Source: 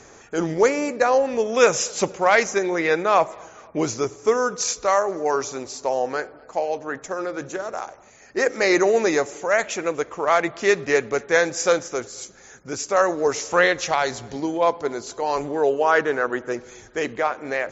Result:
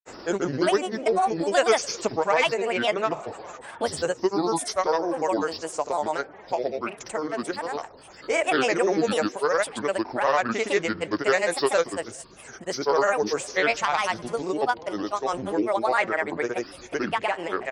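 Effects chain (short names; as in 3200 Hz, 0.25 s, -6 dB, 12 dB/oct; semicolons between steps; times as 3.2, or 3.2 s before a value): downsampling 16000 Hz; grains 0.1 s, grains 20/s, pitch spread up and down by 7 st; three-band squash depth 40%; gain -2.5 dB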